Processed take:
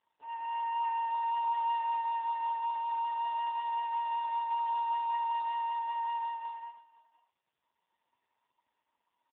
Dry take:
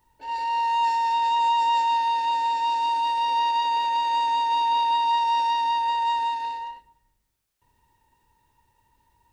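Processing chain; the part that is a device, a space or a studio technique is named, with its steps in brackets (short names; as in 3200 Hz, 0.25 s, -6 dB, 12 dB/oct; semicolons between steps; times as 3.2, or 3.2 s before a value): satellite phone (BPF 330–3100 Hz; echo 0.516 s -19.5 dB; gain -8 dB; AMR-NB 5.15 kbps 8000 Hz)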